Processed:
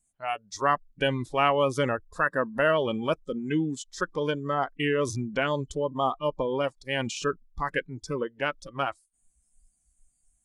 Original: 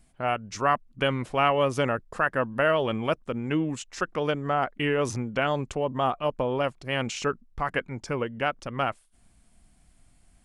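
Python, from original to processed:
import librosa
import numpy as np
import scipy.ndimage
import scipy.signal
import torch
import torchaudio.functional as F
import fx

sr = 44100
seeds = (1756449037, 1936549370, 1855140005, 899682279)

y = fx.noise_reduce_blind(x, sr, reduce_db=21)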